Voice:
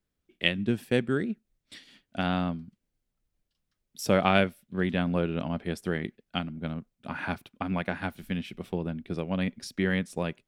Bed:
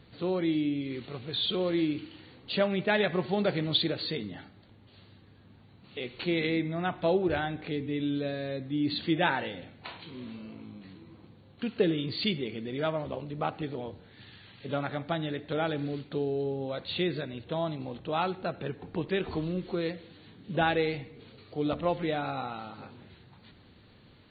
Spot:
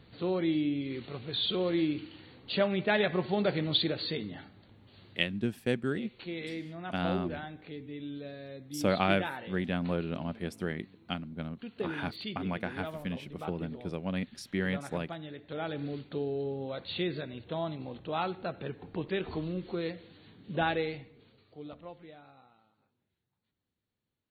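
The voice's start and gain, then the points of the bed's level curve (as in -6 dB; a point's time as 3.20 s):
4.75 s, -4.5 dB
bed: 5.26 s -1 dB
5.50 s -10 dB
15.36 s -10 dB
15.86 s -3 dB
20.71 s -3 dB
22.94 s -31 dB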